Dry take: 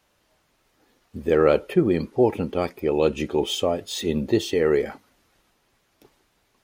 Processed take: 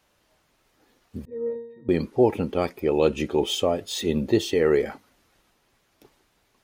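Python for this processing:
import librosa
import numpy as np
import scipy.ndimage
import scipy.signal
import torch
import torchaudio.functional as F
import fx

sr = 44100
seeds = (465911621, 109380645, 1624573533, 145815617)

y = fx.octave_resonator(x, sr, note='A#', decay_s=0.73, at=(1.25, 1.89))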